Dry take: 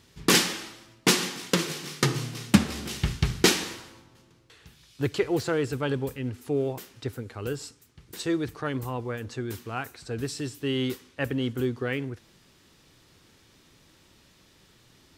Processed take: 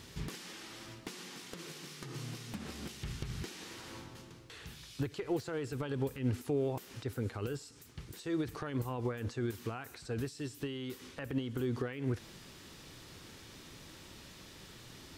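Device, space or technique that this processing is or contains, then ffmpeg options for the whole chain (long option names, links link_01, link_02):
de-esser from a sidechain: -filter_complex "[0:a]asplit=2[link_01][link_02];[link_02]highpass=frequency=5200:poles=1,apad=whole_len=669011[link_03];[link_01][link_03]sidechaincompress=threshold=-55dB:ratio=8:attack=0.86:release=97,volume=6dB"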